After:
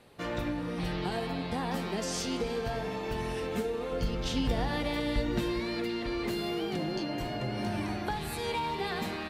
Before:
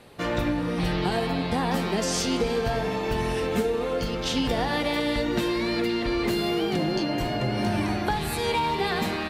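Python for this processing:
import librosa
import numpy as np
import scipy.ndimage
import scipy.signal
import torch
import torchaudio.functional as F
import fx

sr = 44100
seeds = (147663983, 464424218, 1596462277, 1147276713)

y = fx.low_shelf(x, sr, hz=140.0, db=11.5, at=(3.92, 5.6))
y = F.gain(torch.from_numpy(y), -7.5).numpy()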